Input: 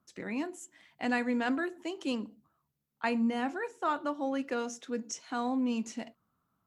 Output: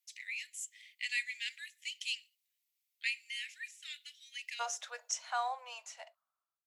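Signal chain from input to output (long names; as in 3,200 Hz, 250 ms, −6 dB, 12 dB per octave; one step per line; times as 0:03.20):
fade-out on the ending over 2.04 s
Butterworth high-pass 2,000 Hz 72 dB per octave, from 0:04.59 580 Hz
level +5.5 dB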